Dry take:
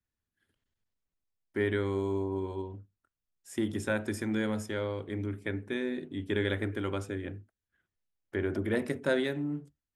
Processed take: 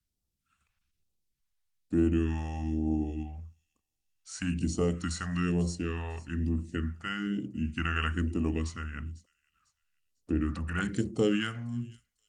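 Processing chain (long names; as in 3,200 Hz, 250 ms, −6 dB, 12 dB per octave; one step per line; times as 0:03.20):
speed change −19%
all-pass phaser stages 2, 1.1 Hz, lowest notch 290–1,600 Hz
on a send: delay with a high-pass on its return 498 ms, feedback 31%, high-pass 4,600 Hz, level −16 dB
on the sum: level +4.5 dB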